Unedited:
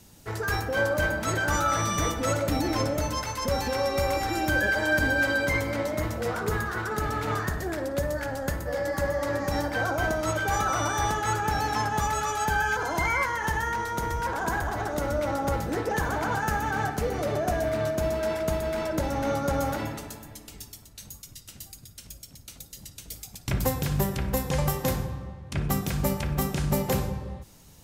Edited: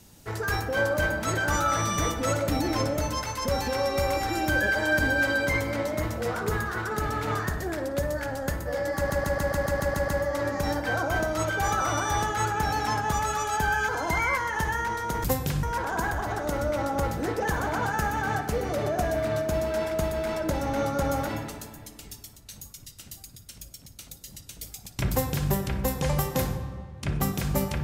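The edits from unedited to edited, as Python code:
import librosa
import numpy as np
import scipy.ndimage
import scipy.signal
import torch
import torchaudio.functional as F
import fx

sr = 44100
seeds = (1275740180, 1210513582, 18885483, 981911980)

y = fx.edit(x, sr, fx.stutter(start_s=8.96, slice_s=0.14, count=9),
    fx.duplicate(start_s=23.6, length_s=0.39, to_s=14.12), tone=tone)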